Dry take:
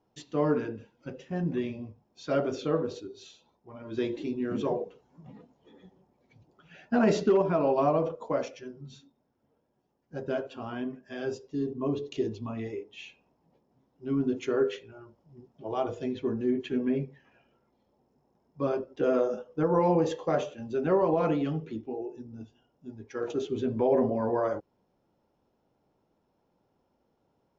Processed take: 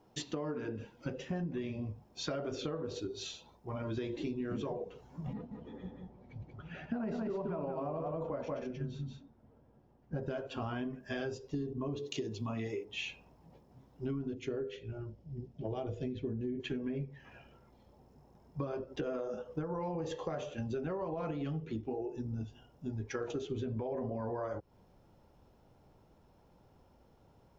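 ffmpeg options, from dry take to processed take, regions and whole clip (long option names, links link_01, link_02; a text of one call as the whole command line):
ffmpeg -i in.wav -filter_complex "[0:a]asettb=1/sr,asplit=3[link_01][link_02][link_03];[link_01]atrim=end=5.334[link_04];[link_02]atrim=start=5.33:end=10.23,asetpts=PTS-STARTPTS,afade=type=in:duration=0.004:curve=qsin,afade=type=out:start_time=4.896:duration=0.004:curve=qsin,lowpass=frequency=1400:poles=1,equalizer=frequency=230:width_type=o:width=0.31:gain=4.5,aecho=1:1:183:0.562,atrim=end_sample=216090[link_05];[link_03]atrim=start=10.226[link_06];[link_04][link_05]acrossfade=duration=0.004:curve1=hsin:curve2=qsin[link_07];[link_07][link_06]acrossfade=duration=0.004:curve1=qsin:curve2=hsin,asettb=1/sr,asplit=3[link_08][link_09][link_10];[link_08]atrim=end=11.964[link_11];[link_09]atrim=start=11.96:end=12.85,asetpts=PTS-STARTPTS,afade=type=in:duration=0.004:curve=qsin,afade=type=out:start_time=0.886:duration=0.004:curve=qsin,highpass=140,aemphasis=mode=production:type=cd[link_12];[link_10]atrim=start=12.846[link_13];[link_11][link_12]acrossfade=duration=0.004:curve1=hsin:curve2=qsin[link_14];[link_14][link_13]acrossfade=duration=0.004:curve1=qsin:curve2=hsin,asettb=1/sr,asplit=3[link_15][link_16][link_17];[link_15]atrim=end=14.344[link_18];[link_16]atrim=start=14.34:end=16.6,asetpts=PTS-STARTPTS,afade=type=in:duration=0.004:curve=qsin,afade=type=out:start_time=2.256:duration=0.004:curve=qsin,lowpass=frequency=2500:poles=1,equalizer=frequency=1100:width_type=o:width=1.4:gain=-13.5[link_19];[link_17]atrim=start=16.596[link_20];[link_18][link_19]acrossfade=duration=0.004:curve1=hsin:curve2=qsin[link_21];[link_21][link_20]acrossfade=duration=0.004:curve1=qsin:curve2=hsin,asubboost=boost=3:cutoff=130,alimiter=level_in=1.5dB:limit=-24dB:level=0:latency=1:release=312,volume=-1.5dB,acompressor=threshold=-43dB:ratio=6,volume=8dB" out.wav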